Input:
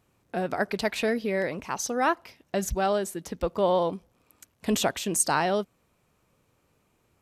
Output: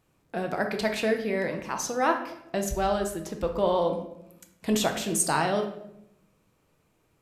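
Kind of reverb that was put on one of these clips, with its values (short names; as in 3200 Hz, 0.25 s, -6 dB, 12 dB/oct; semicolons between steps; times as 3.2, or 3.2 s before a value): shoebox room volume 230 m³, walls mixed, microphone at 0.63 m; gain -1.5 dB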